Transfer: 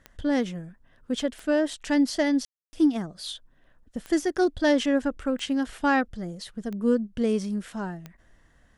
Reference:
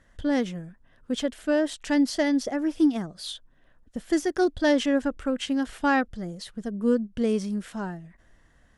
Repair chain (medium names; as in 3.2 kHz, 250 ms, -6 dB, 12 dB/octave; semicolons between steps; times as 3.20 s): de-click; room tone fill 2.45–2.73 s